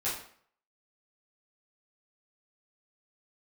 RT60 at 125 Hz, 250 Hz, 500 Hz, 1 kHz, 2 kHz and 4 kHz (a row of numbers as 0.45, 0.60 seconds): 0.45, 0.55, 0.55, 0.55, 0.50, 0.45 seconds